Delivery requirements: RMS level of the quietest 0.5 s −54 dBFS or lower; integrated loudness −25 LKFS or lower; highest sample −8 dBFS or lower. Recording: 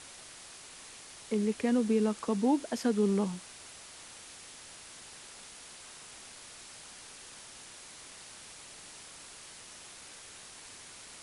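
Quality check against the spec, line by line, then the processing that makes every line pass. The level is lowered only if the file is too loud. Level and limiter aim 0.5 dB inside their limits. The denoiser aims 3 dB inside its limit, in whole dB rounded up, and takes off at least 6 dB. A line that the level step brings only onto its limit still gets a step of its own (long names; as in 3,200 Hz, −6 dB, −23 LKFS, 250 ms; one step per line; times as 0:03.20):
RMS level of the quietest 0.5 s −50 dBFS: out of spec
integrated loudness −30.0 LKFS: in spec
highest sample −17.0 dBFS: in spec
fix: broadband denoise 7 dB, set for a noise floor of −50 dBFS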